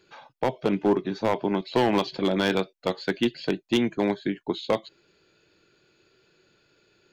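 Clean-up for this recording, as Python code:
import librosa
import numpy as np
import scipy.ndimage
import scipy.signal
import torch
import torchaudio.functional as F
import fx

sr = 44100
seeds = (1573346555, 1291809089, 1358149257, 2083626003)

y = fx.fix_declip(x, sr, threshold_db=-15.0)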